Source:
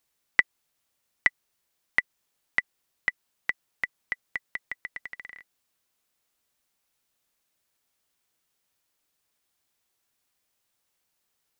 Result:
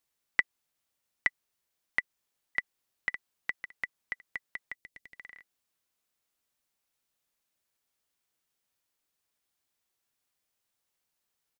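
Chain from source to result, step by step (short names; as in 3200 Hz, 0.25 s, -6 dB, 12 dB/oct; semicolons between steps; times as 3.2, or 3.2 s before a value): 1.99–3.09 echo throw 0.56 s, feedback 15%, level -9.5 dB; 4.75–5.16 bell 1200 Hz -14.5 dB 1.6 oct; gain -5.5 dB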